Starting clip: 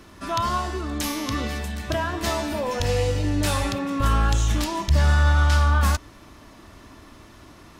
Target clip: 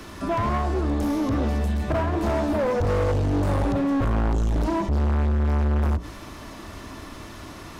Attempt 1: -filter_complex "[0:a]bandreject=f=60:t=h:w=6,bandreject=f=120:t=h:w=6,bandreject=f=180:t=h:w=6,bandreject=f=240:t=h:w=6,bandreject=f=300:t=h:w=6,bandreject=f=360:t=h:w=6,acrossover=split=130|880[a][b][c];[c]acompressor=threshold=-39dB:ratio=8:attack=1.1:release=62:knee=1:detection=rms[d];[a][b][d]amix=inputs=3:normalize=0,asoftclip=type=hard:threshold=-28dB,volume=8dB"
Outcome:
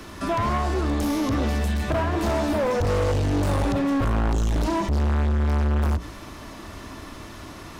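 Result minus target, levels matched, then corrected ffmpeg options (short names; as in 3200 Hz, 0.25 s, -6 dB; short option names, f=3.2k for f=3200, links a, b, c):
compressor: peak gain reduction -7 dB
-filter_complex "[0:a]bandreject=f=60:t=h:w=6,bandreject=f=120:t=h:w=6,bandreject=f=180:t=h:w=6,bandreject=f=240:t=h:w=6,bandreject=f=300:t=h:w=6,bandreject=f=360:t=h:w=6,acrossover=split=130|880[a][b][c];[c]acompressor=threshold=-47dB:ratio=8:attack=1.1:release=62:knee=1:detection=rms[d];[a][b][d]amix=inputs=3:normalize=0,asoftclip=type=hard:threshold=-28dB,volume=8dB"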